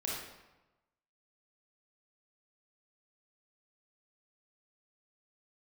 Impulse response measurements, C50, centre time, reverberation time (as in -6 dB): -0.5 dB, 69 ms, 1.1 s